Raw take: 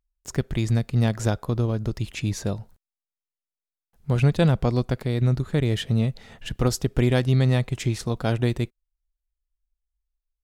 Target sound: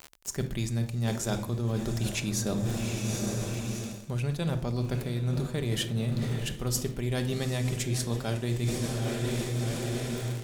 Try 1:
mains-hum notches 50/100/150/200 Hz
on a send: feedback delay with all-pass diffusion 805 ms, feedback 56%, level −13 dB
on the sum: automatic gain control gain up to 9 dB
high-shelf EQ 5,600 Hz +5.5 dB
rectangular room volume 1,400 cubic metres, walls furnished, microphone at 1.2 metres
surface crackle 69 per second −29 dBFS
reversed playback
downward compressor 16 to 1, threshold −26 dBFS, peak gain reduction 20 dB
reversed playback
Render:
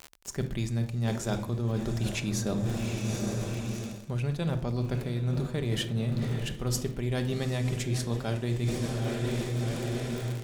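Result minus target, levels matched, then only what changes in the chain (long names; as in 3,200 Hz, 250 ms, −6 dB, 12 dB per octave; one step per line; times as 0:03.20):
8,000 Hz band −3.5 dB
change: high-shelf EQ 5,600 Hz +13.5 dB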